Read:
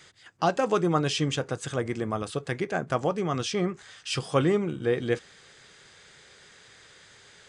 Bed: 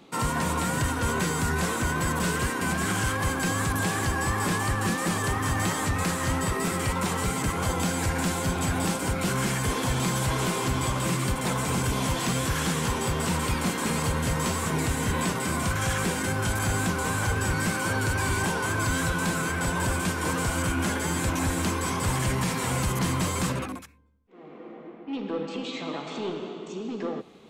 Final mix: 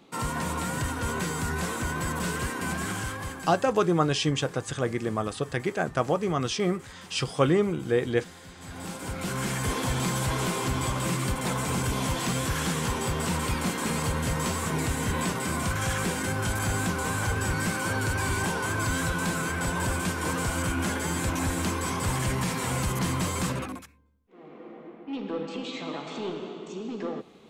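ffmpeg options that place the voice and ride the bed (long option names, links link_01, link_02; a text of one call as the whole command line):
ffmpeg -i stem1.wav -i stem2.wav -filter_complex "[0:a]adelay=3050,volume=1dB[link_01];[1:a]volume=16dB,afade=type=out:start_time=2.75:duration=0.95:silence=0.133352,afade=type=in:start_time=8.57:duration=1.12:silence=0.105925[link_02];[link_01][link_02]amix=inputs=2:normalize=0" out.wav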